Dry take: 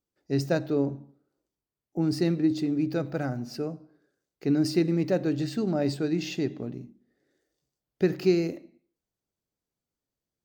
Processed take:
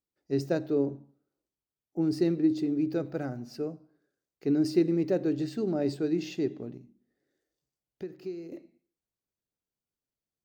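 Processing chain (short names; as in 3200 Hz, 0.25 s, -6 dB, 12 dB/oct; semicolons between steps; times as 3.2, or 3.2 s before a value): dynamic EQ 380 Hz, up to +8 dB, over -38 dBFS, Q 1.5; 6.77–8.52 compressor 2:1, threshold -42 dBFS, peak gain reduction 17 dB; gain -6.5 dB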